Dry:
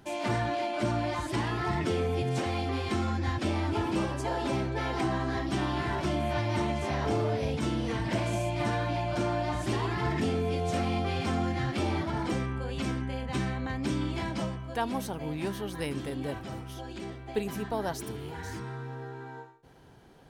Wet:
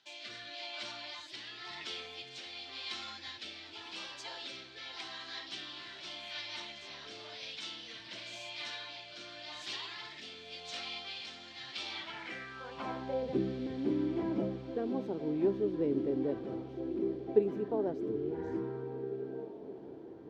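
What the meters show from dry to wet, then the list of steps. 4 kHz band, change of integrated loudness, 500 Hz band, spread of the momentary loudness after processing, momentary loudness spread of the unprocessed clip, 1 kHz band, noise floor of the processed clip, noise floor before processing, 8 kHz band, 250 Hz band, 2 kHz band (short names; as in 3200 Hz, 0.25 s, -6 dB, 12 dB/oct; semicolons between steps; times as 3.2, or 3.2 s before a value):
0.0 dB, -7.0 dB, -4.0 dB, 12 LU, 9 LU, -14.5 dB, -50 dBFS, -43 dBFS, -10.0 dB, -6.0 dB, -8.0 dB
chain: bell 9800 Hz -12.5 dB 0.38 oct; in parallel at +1 dB: vocal rider within 5 dB; on the sum: band-pass sweep 3900 Hz -> 370 Hz, 11.92–13.41; rotary speaker horn 0.9 Hz; diffused feedback echo 1.783 s, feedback 46%, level -15 dB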